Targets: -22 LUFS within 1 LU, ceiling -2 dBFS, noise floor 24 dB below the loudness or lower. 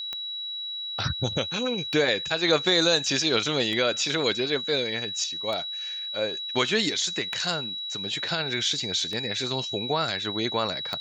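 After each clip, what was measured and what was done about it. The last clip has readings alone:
clicks 7; steady tone 3900 Hz; tone level -31 dBFS; loudness -25.5 LUFS; peak -8.5 dBFS; loudness target -22.0 LUFS
-> de-click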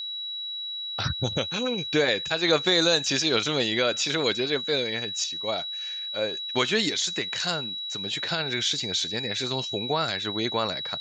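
clicks 0; steady tone 3900 Hz; tone level -31 dBFS
-> notch 3900 Hz, Q 30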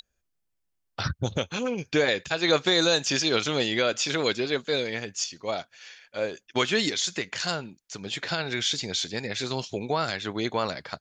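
steady tone none; loudness -27.0 LUFS; peak -9.5 dBFS; loudness target -22.0 LUFS
-> gain +5 dB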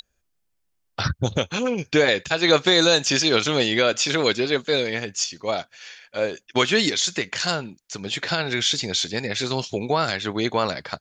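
loudness -22.0 LUFS; peak -4.5 dBFS; noise floor -72 dBFS

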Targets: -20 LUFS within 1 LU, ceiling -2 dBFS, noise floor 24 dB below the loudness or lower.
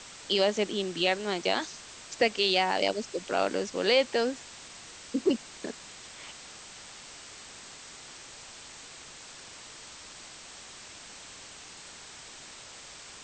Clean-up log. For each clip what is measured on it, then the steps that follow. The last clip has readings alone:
noise floor -48 dBFS; noise floor target -53 dBFS; loudness -28.5 LUFS; peak -11.0 dBFS; loudness target -20.0 LUFS
-> denoiser 6 dB, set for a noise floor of -48 dBFS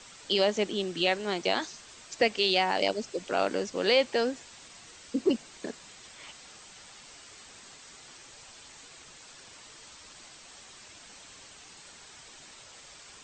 noise floor -51 dBFS; noise floor target -53 dBFS
-> denoiser 6 dB, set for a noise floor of -51 dBFS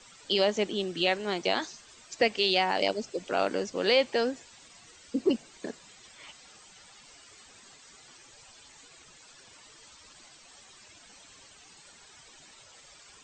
noise floor -55 dBFS; loudness -28.0 LUFS; peak -11.0 dBFS; loudness target -20.0 LUFS
-> gain +8 dB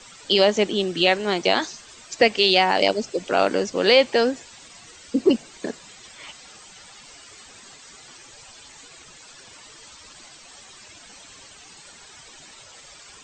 loudness -20.0 LUFS; peak -3.0 dBFS; noise floor -47 dBFS

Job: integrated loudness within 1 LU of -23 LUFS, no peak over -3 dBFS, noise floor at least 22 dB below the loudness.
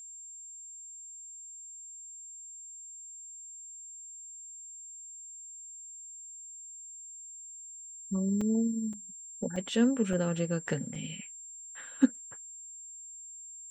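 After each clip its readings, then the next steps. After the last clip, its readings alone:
dropouts 5; longest dropout 4.1 ms; steady tone 7400 Hz; tone level -44 dBFS; loudness -36.0 LUFS; peak -11.5 dBFS; loudness target -23.0 LUFS
-> interpolate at 8.41/8.93/9.56/10.13/10.95, 4.1 ms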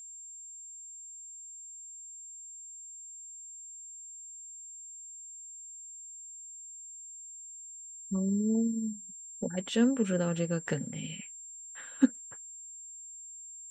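dropouts 0; steady tone 7400 Hz; tone level -44 dBFS
-> notch 7400 Hz, Q 30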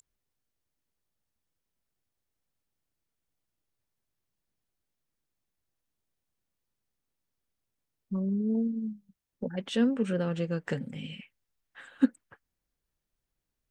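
steady tone none; loudness -31.0 LUFS; peak -11.5 dBFS; loudness target -23.0 LUFS
-> gain +8 dB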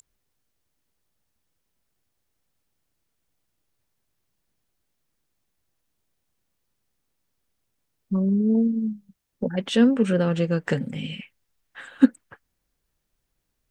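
loudness -23.0 LUFS; peak -3.5 dBFS; noise floor -77 dBFS

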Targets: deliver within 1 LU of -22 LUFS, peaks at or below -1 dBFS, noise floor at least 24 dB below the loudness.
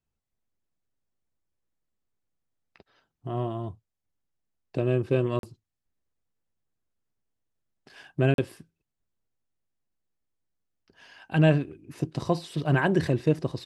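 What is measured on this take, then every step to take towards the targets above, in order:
dropouts 2; longest dropout 42 ms; loudness -27.0 LUFS; peak -8.0 dBFS; loudness target -22.0 LUFS
-> interpolate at 5.39/8.34, 42 ms; gain +5 dB

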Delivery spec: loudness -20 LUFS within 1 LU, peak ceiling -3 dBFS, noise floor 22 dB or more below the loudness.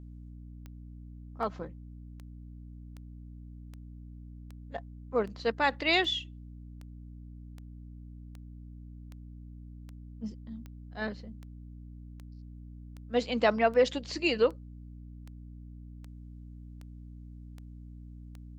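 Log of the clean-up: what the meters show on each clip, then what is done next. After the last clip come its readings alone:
clicks 24; hum 60 Hz; harmonics up to 300 Hz; hum level -44 dBFS; loudness -30.5 LUFS; peak -11.0 dBFS; loudness target -20.0 LUFS
-> de-click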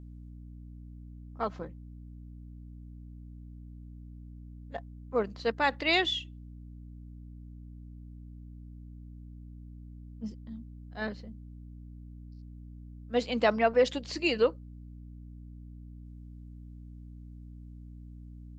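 clicks 0; hum 60 Hz; harmonics up to 300 Hz; hum level -44 dBFS
-> notches 60/120/180/240/300 Hz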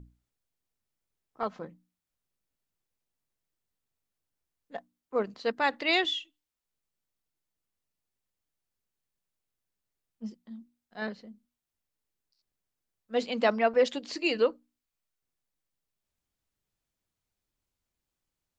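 hum none; loudness -29.0 LUFS; peak -11.0 dBFS; loudness target -20.0 LUFS
-> gain +9 dB; limiter -3 dBFS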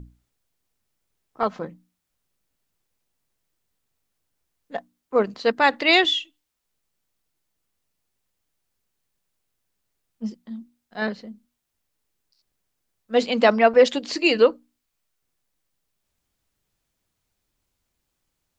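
loudness -20.5 LUFS; peak -3.0 dBFS; noise floor -78 dBFS

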